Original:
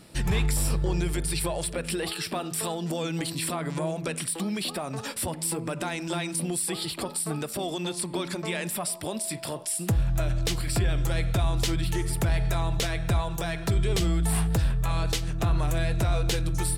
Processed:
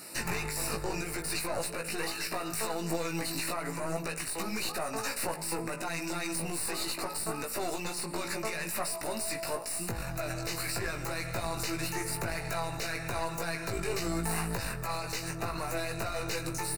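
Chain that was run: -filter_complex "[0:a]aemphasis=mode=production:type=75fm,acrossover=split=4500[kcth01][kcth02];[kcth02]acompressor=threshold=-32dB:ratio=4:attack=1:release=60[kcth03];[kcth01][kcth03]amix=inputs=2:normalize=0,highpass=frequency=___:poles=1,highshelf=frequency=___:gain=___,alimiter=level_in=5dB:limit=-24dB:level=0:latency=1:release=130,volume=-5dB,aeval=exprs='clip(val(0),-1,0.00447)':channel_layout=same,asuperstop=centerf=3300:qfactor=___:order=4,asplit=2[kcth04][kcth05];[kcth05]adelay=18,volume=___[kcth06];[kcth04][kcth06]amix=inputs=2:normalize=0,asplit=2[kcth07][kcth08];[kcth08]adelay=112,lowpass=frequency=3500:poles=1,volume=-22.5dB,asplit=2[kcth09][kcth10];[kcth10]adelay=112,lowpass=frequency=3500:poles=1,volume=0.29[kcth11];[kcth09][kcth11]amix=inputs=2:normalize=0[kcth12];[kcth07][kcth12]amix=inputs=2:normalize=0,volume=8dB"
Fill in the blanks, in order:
820, 3100, -11, 3.2, -4dB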